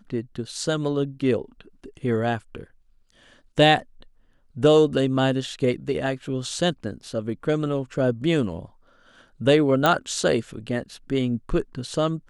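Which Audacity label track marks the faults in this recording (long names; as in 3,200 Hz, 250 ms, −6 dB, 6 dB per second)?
9.860000	9.860000	click −6 dBFS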